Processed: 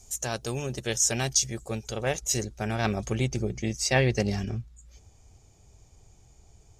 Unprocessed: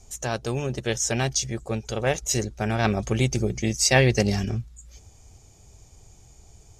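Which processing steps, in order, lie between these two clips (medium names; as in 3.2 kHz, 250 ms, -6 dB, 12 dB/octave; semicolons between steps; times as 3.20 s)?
treble shelf 5.3 kHz +11.5 dB, from 1.89 s +5 dB, from 3.15 s -5 dB; trim -4.5 dB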